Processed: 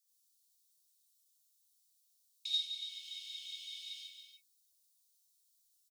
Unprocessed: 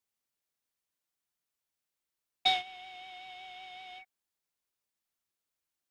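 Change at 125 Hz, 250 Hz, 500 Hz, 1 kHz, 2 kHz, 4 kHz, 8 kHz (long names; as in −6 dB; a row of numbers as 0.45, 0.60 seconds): can't be measured, below −35 dB, below −40 dB, below −40 dB, −17.0 dB, −2.0 dB, +3.5 dB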